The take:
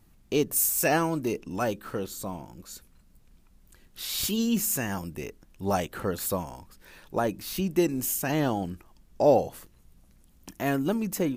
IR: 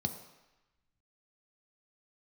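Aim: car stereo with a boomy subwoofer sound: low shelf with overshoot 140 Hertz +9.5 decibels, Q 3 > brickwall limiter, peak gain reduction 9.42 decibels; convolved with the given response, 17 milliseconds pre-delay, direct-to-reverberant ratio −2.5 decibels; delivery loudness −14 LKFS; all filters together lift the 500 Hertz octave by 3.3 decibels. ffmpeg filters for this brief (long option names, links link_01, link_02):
-filter_complex "[0:a]equalizer=frequency=500:width_type=o:gain=5,asplit=2[link_01][link_02];[1:a]atrim=start_sample=2205,adelay=17[link_03];[link_02][link_03]afir=irnorm=-1:irlink=0,volume=0.5dB[link_04];[link_01][link_04]amix=inputs=2:normalize=0,lowshelf=frequency=140:width_type=q:width=3:gain=9.5,volume=6dB,alimiter=limit=-3dB:level=0:latency=1"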